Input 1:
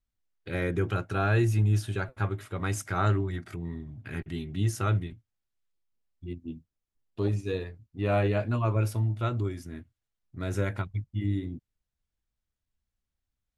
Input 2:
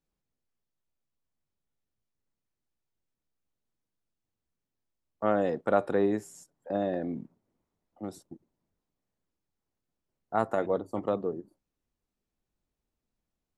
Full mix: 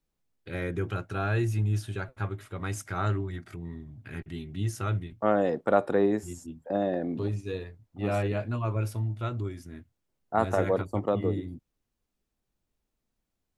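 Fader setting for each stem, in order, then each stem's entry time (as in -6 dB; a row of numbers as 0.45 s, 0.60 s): -3.0 dB, +2.0 dB; 0.00 s, 0.00 s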